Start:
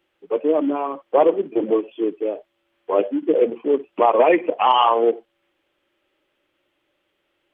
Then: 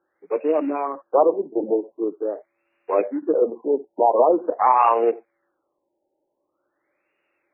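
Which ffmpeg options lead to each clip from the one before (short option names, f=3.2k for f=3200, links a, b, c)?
-af "aemphasis=mode=production:type=bsi,afftfilt=real='re*lt(b*sr/1024,920*pow(2900/920,0.5+0.5*sin(2*PI*0.45*pts/sr)))':imag='im*lt(b*sr/1024,920*pow(2900/920,0.5+0.5*sin(2*PI*0.45*pts/sr)))':win_size=1024:overlap=0.75"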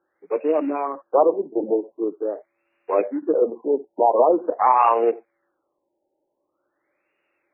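-af anull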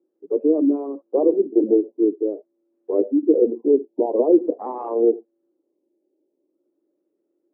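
-af "asuperpass=centerf=300:order=4:qfactor=1.5,volume=8dB"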